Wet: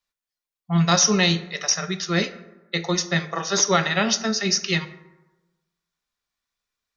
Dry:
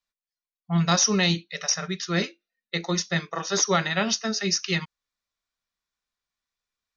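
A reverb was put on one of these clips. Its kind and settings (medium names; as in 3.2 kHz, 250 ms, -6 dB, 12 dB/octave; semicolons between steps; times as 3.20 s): plate-style reverb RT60 1.1 s, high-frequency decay 0.45×, DRR 11 dB; trim +3 dB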